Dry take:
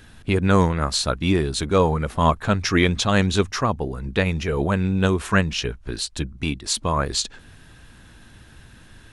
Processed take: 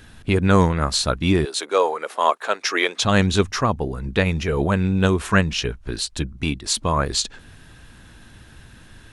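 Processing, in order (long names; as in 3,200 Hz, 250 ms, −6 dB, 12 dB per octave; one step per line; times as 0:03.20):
0:01.45–0:03.03: high-pass filter 410 Hz 24 dB per octave
level +1.5 dB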